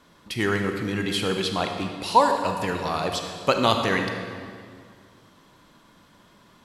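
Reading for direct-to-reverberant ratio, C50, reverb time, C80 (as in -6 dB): 4.0 dB, 4.5 dB, 2.1 s, 6.0 dB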